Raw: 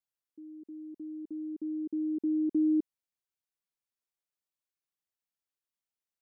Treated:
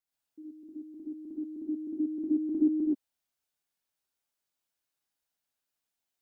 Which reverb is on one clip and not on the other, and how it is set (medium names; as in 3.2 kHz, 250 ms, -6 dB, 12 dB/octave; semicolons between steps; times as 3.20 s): gated-style reverb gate 150 ms rising, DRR -6.5 dB; trim -1 dB